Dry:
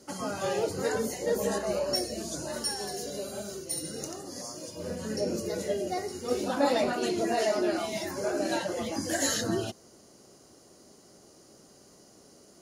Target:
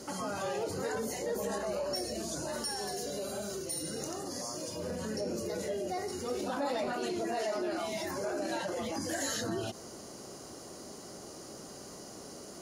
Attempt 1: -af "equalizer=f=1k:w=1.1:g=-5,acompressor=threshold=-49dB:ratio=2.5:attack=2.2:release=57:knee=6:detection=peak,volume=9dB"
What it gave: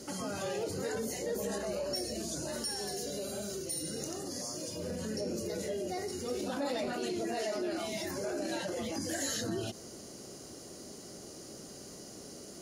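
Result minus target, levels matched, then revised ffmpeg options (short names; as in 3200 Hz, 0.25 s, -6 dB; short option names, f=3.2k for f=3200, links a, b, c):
1000 Hz band -4.0 dB
-af "equalizer=f=1k:w=1.1:g=3,acompressor=threshold=-49dB:ratio=2.5:attack=2.2:release=57:knee=6:detection=peak,volume=9dB"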